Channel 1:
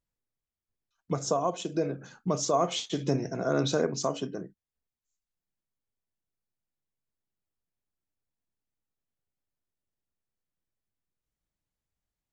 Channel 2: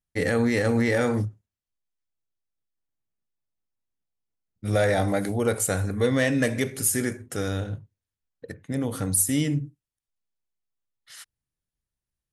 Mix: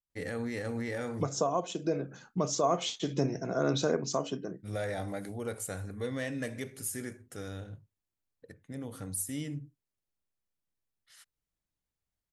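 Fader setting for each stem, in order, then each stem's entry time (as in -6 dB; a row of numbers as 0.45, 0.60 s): -2.0, -13.0 dB; 0.10, 0.00 s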